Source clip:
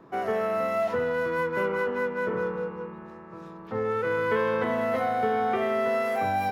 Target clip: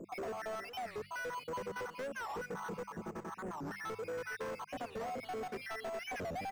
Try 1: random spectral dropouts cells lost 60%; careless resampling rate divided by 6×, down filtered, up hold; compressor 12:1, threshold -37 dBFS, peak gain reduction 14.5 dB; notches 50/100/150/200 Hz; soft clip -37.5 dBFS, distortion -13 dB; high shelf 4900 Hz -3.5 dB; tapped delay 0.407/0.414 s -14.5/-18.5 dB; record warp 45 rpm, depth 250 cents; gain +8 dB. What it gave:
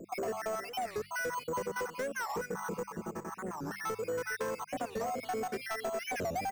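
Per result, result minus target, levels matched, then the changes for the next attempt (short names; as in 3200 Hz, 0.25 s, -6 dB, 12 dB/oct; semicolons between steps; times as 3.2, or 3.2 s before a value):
8000 Hz band +5.0 dB; soft clip: distortion -7 dB
change: high shelf 4900 Hz -12.5 dB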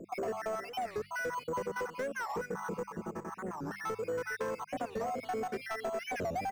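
soft clip: distortion -7 dB
change: soft clip -45.5 dBFS, distortion -7 dB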